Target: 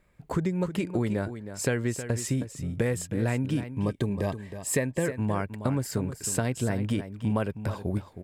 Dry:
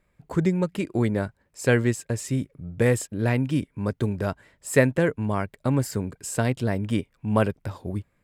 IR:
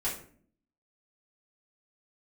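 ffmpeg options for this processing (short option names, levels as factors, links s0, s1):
-filter_complex "[0:a]acompressor=threshold=0.0447:ratio=6,asettb=1/sr,asplit=3[s0][s1][s2];[s0]atrim=end=3.684[s3];[s1]atrim=start=3.68:end=5.06,asetpts=PTS-STARTPTS,afade=t=in:d=0.004:c=qsin,afade=t=out:st=1.376:d=0.004:c=qsin,asuperstop=centerf=1400:order=20:qfactor=5.2[s4];[s2]atrim=start=5.056[s5];[s3][s4]acrossfade=d=0.004:c1=hsin:c2=qsin[s6];[s6][s5]acrossfade=d=0.004:c1=qsin:c2=hsin,aecho=1:1:316:0.282,volume=1.41"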